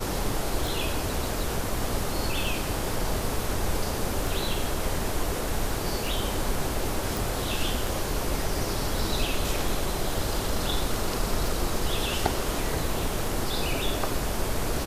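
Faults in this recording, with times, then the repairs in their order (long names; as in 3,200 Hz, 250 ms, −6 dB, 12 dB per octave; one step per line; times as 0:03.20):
scratch tick 33 1/3 rpm
0:07.17: click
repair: click removal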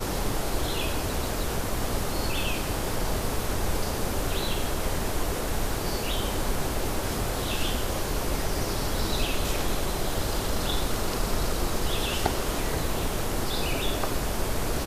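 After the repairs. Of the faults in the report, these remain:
none of them is left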